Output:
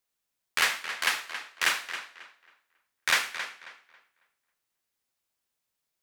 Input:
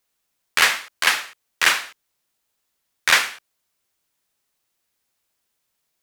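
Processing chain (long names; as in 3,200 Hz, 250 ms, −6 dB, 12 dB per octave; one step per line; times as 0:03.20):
tape delay 272 ms, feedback 28%, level −9 dB, low-pass 4,000 Hz
level −8.5 dB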